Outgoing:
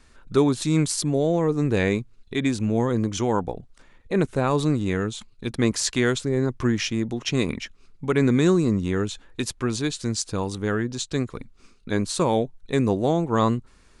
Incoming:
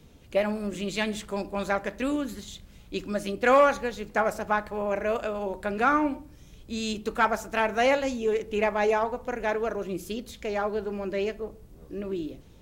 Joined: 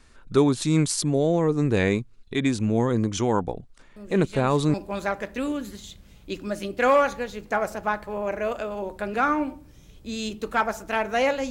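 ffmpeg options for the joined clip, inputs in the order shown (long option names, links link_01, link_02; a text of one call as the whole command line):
ffmpeg -i cue0.wav -i cue1.wav -filter_complex "[1:a]asplit=2[link_01][link_02];[0:a]apad=whole_dur=11.5,atrim=end=11.5,atrim=end=4.742[link_03];[link_02]atrim=start=1.378:end=8.14[link_04];[link_01]atrim=start=0.6:end=1.38,asetpts=PTS-STARTPTS,volume=-10.5dB,afade=type=in:duration=0.004:curve=hsin,afade=type=out:start_time=0.776:duration=0.004:curve=hsin,adelay=3960[link_05];[link_03][link_04]acrossfade=duration=0.004:curve1=hsin:curve2=hsin[link_06];[link_06][link_05]amix=inputs=2:normalize=0" out.wav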